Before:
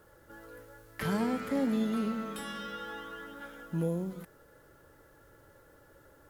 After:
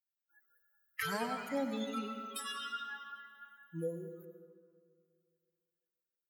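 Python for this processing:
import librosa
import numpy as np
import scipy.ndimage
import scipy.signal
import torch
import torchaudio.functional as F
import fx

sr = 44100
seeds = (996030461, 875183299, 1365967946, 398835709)

y = fx.bin_expand(x, sr, power=3.0)
y = fx.highpass(y, sr, hz=1100.0, slope=6)
y = fx.rev_freeverb(y, sr, rt60_s=2.1, hf_ratio=0.75, predelay_ms=65, drr_db=7.0)
y = y * 10.0 ** (7.5 / 20.0)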